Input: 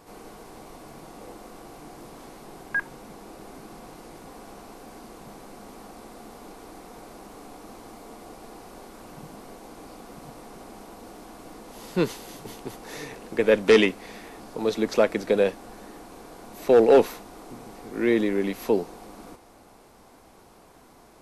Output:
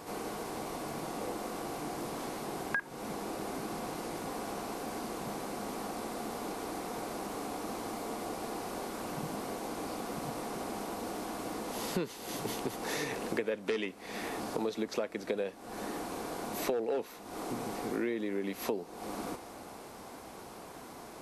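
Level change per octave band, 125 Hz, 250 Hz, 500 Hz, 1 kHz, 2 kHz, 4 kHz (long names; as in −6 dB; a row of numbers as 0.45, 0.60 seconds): −5.0, −7.5, −12.0, −1.5, −7.5, −5.5 decibels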